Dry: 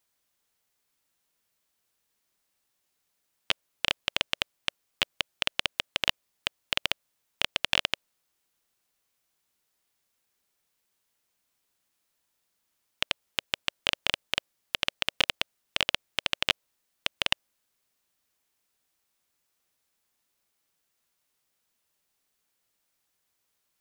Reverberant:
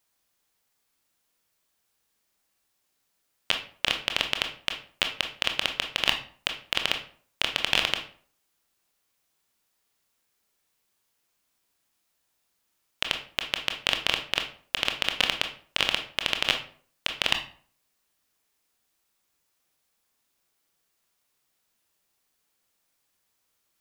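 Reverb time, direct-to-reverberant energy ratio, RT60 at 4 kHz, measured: 0.50 s, 4.5 dB, 0.35 s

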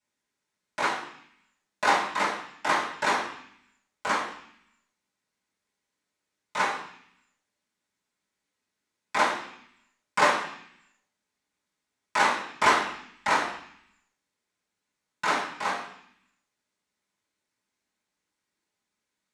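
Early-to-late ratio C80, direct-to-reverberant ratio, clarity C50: 9.5 dB, −10.0 dB, 6.5 dB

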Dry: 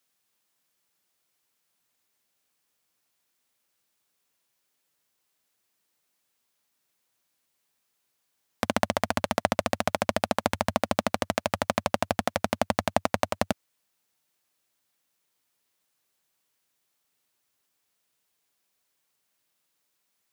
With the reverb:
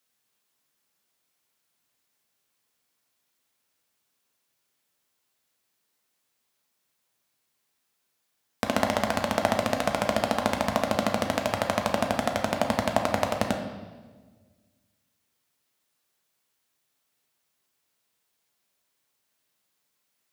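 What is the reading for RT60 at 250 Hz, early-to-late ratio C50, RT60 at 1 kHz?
1.9 s, 6.5 dB, 1.3 s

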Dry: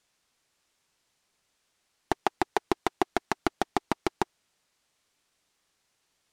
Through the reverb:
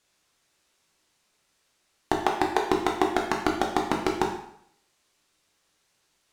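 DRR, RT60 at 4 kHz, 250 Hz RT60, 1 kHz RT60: 0.5 dB, 0.65 s, 0.65 s, 0.70 s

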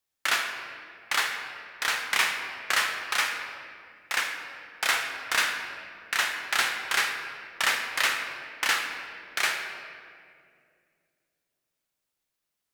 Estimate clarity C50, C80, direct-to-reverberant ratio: 4.5 dB, 6.0 dB, 3.0 dB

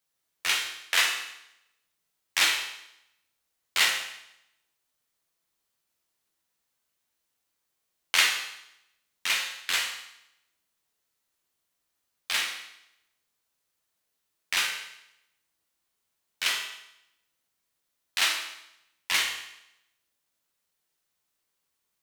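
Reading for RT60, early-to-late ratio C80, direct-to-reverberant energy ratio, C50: 0.80 s, 7.5 dB, −0.5 dB, 5.0 dB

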